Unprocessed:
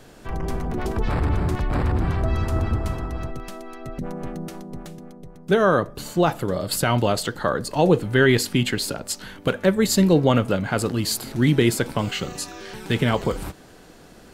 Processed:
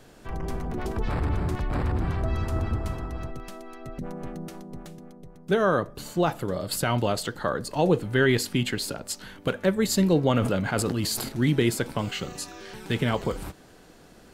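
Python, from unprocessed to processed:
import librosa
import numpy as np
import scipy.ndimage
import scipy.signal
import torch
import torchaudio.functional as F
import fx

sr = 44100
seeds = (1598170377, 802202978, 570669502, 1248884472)

y = fx.sustainer(x, sr, db_per_s=38.0, at=(10.38, 11.29))
y = F.gain(torch.from_numpy(y), -4.5).numpy()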